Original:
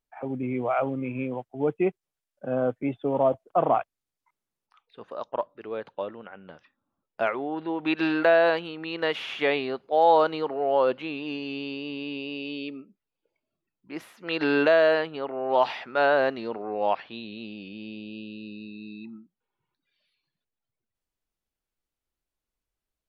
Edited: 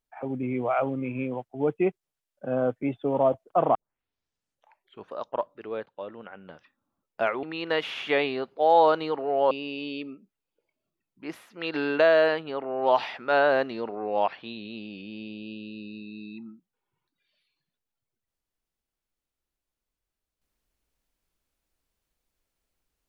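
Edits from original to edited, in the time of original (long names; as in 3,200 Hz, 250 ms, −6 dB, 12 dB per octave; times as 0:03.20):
0:03.75: tape start 1.36 s
0:05.86–0:06.21: fade in, from −16 dB
0:07.43–0:08.75: remove
0:10.83–0:12.18: remove
0:13.94–0:14.66: fade out, to −6.5 dB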